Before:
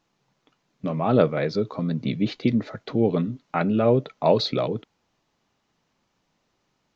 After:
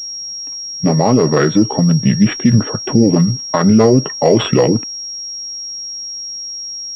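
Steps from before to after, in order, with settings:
formants moved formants −4 semitones
dynamic equaliser 1,300 Hz, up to +5 dB, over −40 dBFS, Q 0.87
boost into a limiter +15 dB
switching amplifier with a slow clock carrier 5,600 Hz
level −1 dB

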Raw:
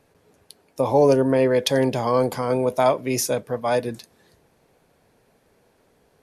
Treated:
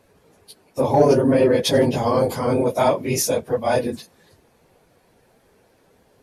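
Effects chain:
random phases in long frames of 50 ms
dynamic equaliser 1,400 Hz, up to −3 dB, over −37 dBFS, Q 0.85
in parallel at −6.5 dB: soft clipping −14.5 dBFS, distortion −15 dB

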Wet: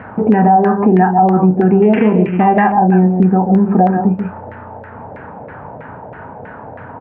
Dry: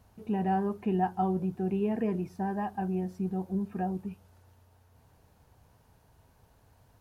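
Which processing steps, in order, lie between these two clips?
0:01.82–0:02.58: samples sorted by size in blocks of 16 samples
loudspeaker in its box 200–2,500 Hz, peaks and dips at 360 Hz −5 dB, 700 Hz −4 dB, 1,100 Hz −6 dB
double-tracking delay 33 ms −10 dB
single-tap delay 141 ms −10 dB
auto-filter low-pass saw down 3.1 Hz 600–1,900 Hz
downward compressor 3 to 1, threshold −45 dBFS, peak gain reduction 17.5 dB
boost into a limiter +35 dB
level −1 dB

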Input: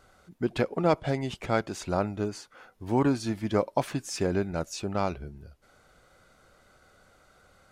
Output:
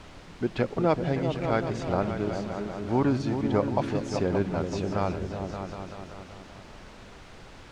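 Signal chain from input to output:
on a send: echo whose low-pass opens from repeat to repeat 192 ms, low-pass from 200 Hz, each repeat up 2 octaves, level −3 dB
on the sum: background noise pink −46 dBFS
high-frequency loss of the air 110 metres

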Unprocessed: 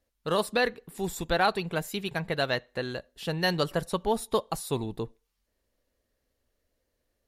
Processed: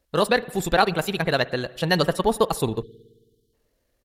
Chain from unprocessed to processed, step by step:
tempo change 1.8×
spring reverb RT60 1.4 s, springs 54 ms, chirp 30 ms, DRR 18.5 dB
time-frequency box erased 0:02.83–0:03.54, 480–2,900 Hz
level +7 dB

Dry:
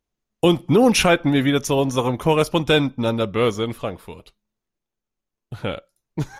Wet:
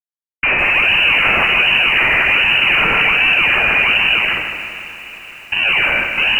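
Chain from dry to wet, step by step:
peak hold with a decay on every bin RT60 0.92 s
high-pass filter 510 Hz 12 dB per octave
in parallel at +1 dB: downward compressor, threshold −31 dBFS, peak gain reduction 19 dB
on the sum: sample-and-hold swept by an LFO 31×, swing 160% 1.3 Hz
fuzz pedal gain 39 dB, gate −45 dBFS
on a send: feedback delay with all-pass diffusion 465 ms, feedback 60%, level −15.5 dB
on the sum: voice inversion scrambler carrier 2,900 Hz
feedback echo at a low word length 155 ms, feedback 55%, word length 7 bits, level −7 dB

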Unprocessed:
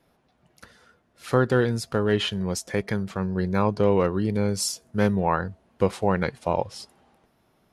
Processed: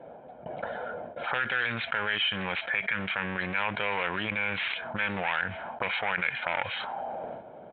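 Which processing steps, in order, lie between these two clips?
noise gate with hold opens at −53 dBFS
comb filter 1.3 ms, depth 55%
in parallel at +2 dB: brickwall limiter −19.5 dBFS, peak gain reduction 11.5 dB
on the sum: asymmetric clip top −26 dBFS, bottom −9.5 dBFS
envelope filter 500–2,300 Hz, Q 2.5, up, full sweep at −21.5 dBFS
downsampling to 8,000 Hz
envelope flattener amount 70%

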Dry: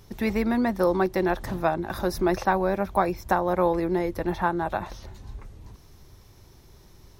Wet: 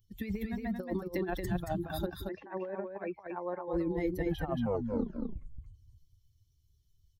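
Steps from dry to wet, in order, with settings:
spectral dynamics exaggerated over time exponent 2
compressor whose output falls as the input rises −31 dBFS, ratio −0.5
0:02.06–0:03.68: loudspeaker in its box 390–2,100 Hz, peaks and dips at 710 Hz −9 dB, 1,300 Hz −9 dB, 1,900 Hz +4 dB
0:04.28: tape stop 1.08 s
single-tap delay 227 ms −4 dB
level −2 dB

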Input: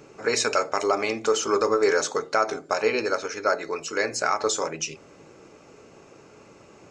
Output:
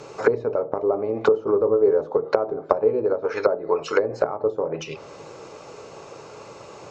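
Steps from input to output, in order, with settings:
graphic EQ with 10 bands 125 Hz +6 dB, 250 Hz −4 dB, 500 Hz +8 dB, 1,000 Hz +9 dB, 4,000 Hz +9 dB, 8,000 Hz +4 dB
treble cut that deepens with the level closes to 350 Hz, closed at −14 dBFS
level +2 dB

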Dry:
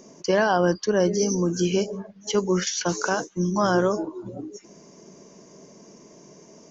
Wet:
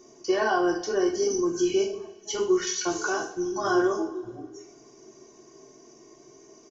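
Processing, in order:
comb filter 2.7 ms, depth 79%
convolution reverb, pre-delay 3 ms, DRR −1.5 dB
level −9 dB

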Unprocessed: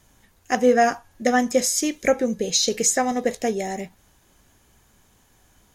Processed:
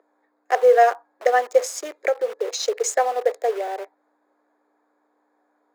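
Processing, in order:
adaptive Wiener filter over 15 samples
in parallel at −3 dB: bit reduction 5 bits
on the sum: mains hum 60 Hz, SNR 15 dB
Butterworth high-pass 420 Hz 48 dB per octave
0:01.62–0:02.60: downward compressor, threshold −16 dBFS, peak gain reduction 7 dB
high-shelf EQ 2,600 Hz −12 dB

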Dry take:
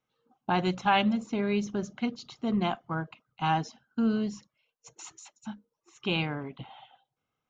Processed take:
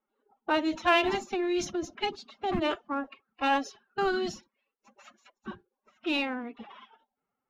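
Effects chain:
in parallel at −9 dB: hard clipping −25.5 dBFS, distortion −10 dB
on the sum: low-shelf EQ 220 Hz −7 dB
low-pass that shuts in the quiet parts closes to 1,400 Hz, open at −24.5 dBFS
phase-vocoder pitch shift with formants kept +9.5 semitones

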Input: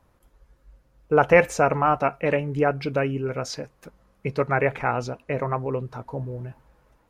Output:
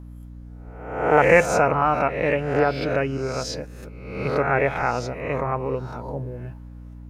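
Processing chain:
peak hold with a rise ahead of every peak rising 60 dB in 0.79 s
mains hum 60 Hz, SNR 16 dB
level −1 dB

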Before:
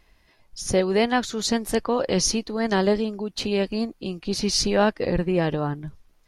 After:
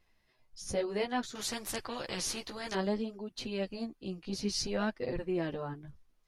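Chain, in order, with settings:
multi-voice chorus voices 2, 0.59 Hz, delay 12 ms, depth 4.2 ms
0:01.35–0:02.75: every bin compressed towards the loudest bin 2 to 1
level −9 dB

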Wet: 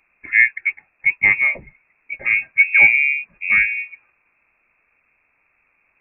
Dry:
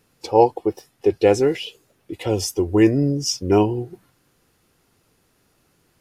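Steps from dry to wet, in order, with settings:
0:02.12–0:03.13: hollow resonant body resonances 220/380/1,000 Hz, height 11 dB, ringing for 85 ms
voice inversion scrambler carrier 2,600 Hz

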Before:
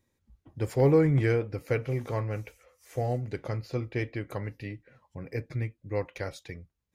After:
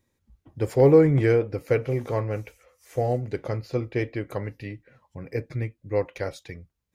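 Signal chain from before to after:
dynamic equaliser 470 Hz, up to +5 dB, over −39 dBFS, Q 0.85
level +2 dB

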